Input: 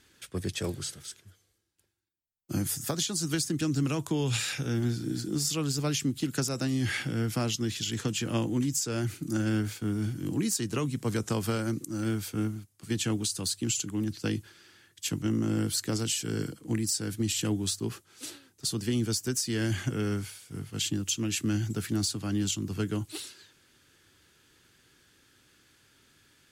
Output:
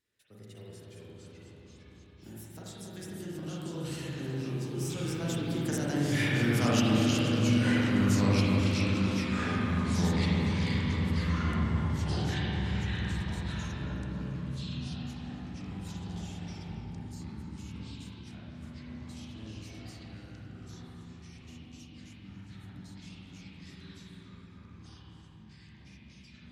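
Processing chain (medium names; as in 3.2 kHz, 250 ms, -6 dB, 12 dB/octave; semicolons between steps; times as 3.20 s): Doppler pass-by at 6.58 s, 38 m/s, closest 19 m; ever faster or slower copies 318 ms, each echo -3 st, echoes 3; filtered feedback delay 275 ms, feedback 68%, low-pass 1.4 kHz, level -4 dB; spring tank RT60 1.9 s, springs 37/41/46 ms, chirp 45 ms, DRR -5 dB; in parallel at -11.5 dB: saturation -26.5 dBFS, distortion -9 dB; on the sum: trim -2.5 dB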